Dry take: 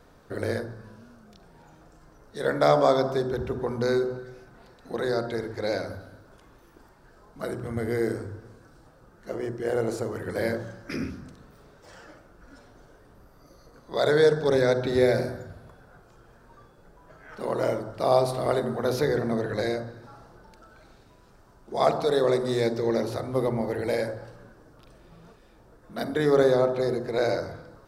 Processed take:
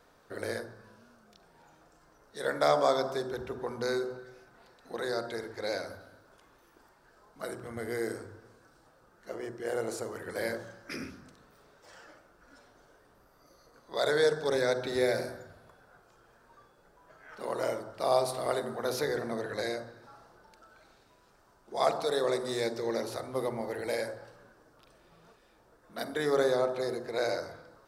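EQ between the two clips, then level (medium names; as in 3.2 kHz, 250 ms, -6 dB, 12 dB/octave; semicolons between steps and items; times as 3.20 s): bass shelf 310 Hz -11.5 dB; dynamic bell 9.4 kHz, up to +5 dB, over -54 dBFS, Q 0.79; -3.0 dB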